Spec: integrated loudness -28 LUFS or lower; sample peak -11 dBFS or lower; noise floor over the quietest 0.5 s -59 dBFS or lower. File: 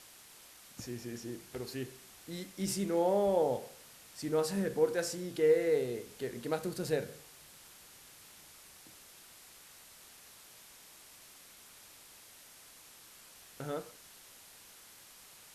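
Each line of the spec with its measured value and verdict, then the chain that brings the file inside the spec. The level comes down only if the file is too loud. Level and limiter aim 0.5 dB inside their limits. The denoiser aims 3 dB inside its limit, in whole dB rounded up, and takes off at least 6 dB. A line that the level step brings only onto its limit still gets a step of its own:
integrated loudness -34.0 LUFS: OK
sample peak -16.5 dBFS: OK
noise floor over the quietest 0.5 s -56 dBFS: fail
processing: denoiser 6 dB, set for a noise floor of -56 dBFS

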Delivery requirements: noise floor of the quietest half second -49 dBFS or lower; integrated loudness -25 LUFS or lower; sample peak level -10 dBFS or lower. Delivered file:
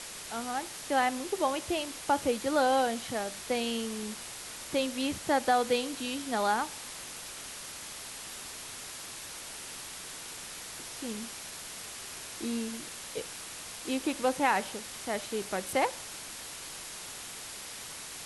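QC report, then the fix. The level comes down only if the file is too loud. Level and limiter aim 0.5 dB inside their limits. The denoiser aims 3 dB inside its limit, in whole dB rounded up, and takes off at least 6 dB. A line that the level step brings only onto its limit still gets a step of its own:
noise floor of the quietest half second -43 dBFS: fail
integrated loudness -33.5 LUFS: OK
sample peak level -13.0 dBFS: OK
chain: denoiser 9 dB, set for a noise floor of -43 dBFS

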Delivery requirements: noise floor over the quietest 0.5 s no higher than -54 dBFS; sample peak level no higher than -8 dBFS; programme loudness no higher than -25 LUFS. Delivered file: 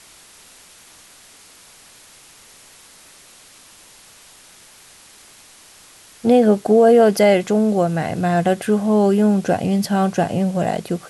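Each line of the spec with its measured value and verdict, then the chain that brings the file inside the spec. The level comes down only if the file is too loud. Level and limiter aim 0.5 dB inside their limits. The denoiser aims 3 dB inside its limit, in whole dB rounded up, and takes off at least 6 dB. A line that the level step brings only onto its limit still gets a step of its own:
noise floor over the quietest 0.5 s -47 dBFS: fail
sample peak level -4.5 dBFS: fail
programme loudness -16.5 LUFS: fail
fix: gain -9 dB

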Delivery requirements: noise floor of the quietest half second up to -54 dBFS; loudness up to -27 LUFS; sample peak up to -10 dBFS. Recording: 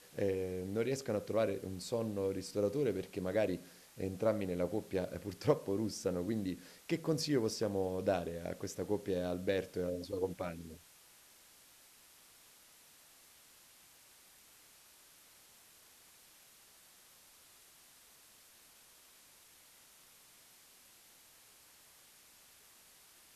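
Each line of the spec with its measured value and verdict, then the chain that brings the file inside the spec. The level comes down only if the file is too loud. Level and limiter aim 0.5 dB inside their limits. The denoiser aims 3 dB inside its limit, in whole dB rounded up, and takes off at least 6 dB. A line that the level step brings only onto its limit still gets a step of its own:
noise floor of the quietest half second -62 dBFS: OK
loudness -37.0 LUFS: OK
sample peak -15.5 dBFS: OK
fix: none

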